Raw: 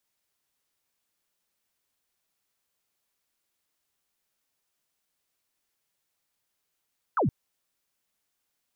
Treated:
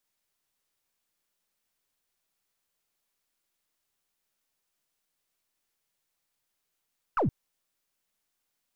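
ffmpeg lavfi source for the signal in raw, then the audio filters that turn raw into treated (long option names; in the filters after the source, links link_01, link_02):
-f lavfi -i "aevalsrc='0.0891*clip(t/0.002,0,1)*clip((0.12-t)/0.002,0,1)*sin(2*PI*1500*0.12/log(100/1500)*(exp(log(100/1500)*t/0.12)-1))':duration=0.12:sample_rate=44100"
-af "aeval=exprs='if(lt(val(0),0),0.708*val(0),val(0))':channel_layout=same"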